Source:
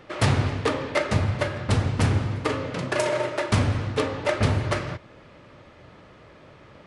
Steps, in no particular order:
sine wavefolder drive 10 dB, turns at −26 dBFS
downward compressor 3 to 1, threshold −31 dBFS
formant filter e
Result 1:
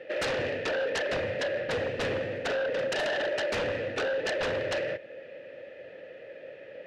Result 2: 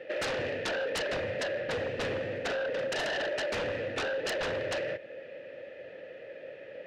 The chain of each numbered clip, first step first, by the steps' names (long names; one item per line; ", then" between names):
formant filter, then downward compressor, then sine wavefolder
formant filter, then sine wavefolder, then downward compressor